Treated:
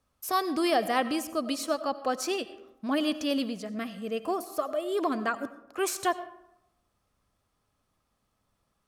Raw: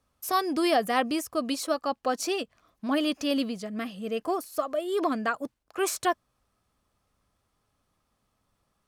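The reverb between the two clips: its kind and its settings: digital reverb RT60 0.84 s, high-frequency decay 0.5×, pre-delay 50 ms, DRR 13.5 dB; gain -1.5 dB

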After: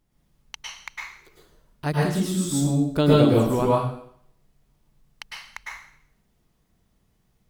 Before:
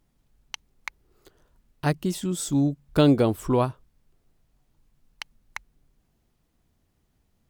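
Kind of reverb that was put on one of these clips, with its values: plate-style reverb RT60 0.64 s, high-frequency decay 1×, pre-delay 95 ms, DRR -5 dB; gain -3 dB

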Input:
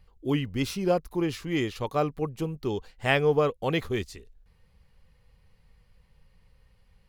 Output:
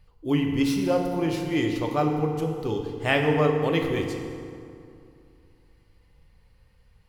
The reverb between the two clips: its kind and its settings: FDN reverb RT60 2.5 s, low-frequency decay 1.1×, high-frequency decay 0.6×, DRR 2 dB

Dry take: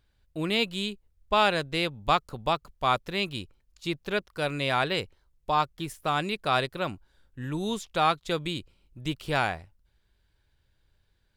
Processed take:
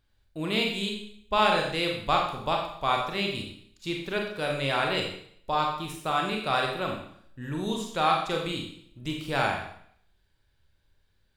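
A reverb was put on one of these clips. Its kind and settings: Schroeder reverb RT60 0.64 s, combs from 29 ms, DRR 0 dB; gain -2.5 dB

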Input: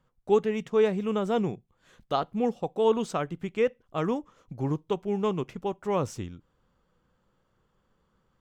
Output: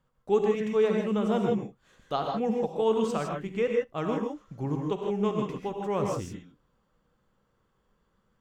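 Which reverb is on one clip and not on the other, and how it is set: non-linear reverb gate 0.18 s rising, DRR 1 dB; gain -3 dB

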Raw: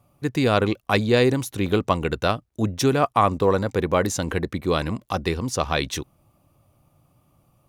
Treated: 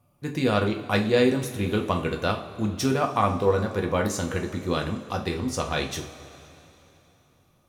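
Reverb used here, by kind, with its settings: two-slope reverb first 0.36 s, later 3.4 s, from -18 dB, DRR 2 dB; gain -5.5 dB

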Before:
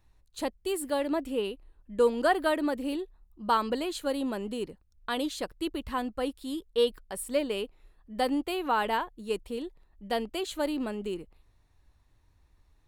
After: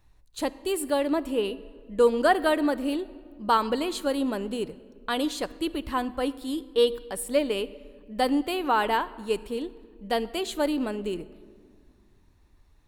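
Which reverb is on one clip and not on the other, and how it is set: shoebox room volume 3000 m³, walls mixed, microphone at 0.37 m; gain +3.5 dB

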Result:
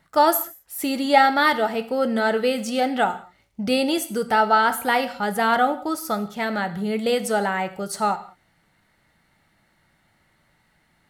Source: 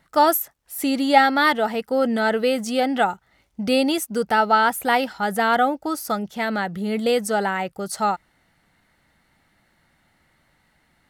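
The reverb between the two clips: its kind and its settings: non-linear reverb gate 0.22 s falling, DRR 9 dB; gain -1 dB

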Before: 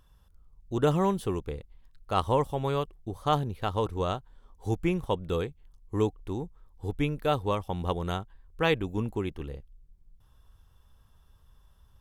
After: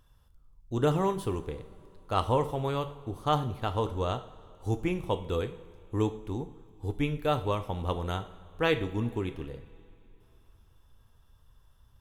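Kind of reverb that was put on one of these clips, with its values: two-slope reverb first 0.49 s, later 3.2 s, from -18 dB, DRR 8 dB; gain -1.5 dB

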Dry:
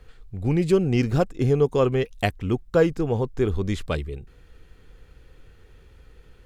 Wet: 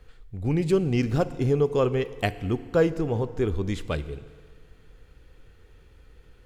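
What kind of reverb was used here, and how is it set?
FDN reverb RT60 1.9 s, low-frequency decay 0.9×, high-frequency decay 0.95×, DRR 13.5 dB; gain -2.5 dB

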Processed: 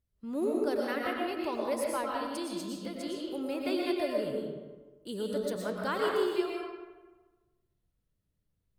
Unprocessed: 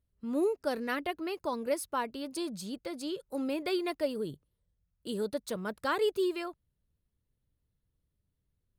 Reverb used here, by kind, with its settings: digital reverb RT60 1.3 s, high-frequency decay 0.6×, pre-delay 75 ms, DRR -2 dB; gain -3 dB

